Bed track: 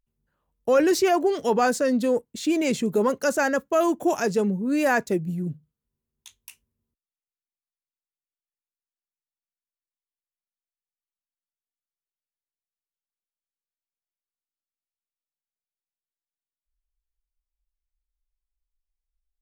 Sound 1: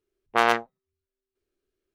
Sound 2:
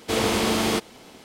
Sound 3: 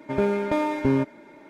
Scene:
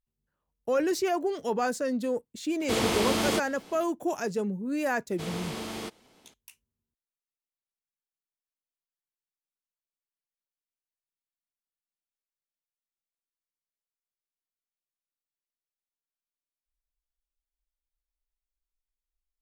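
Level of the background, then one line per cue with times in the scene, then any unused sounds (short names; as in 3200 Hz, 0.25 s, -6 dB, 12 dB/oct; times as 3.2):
bed track -7 dB
2.6 add 2 -4 dB
5.1 add 2 -14 dB
not used: 1, 3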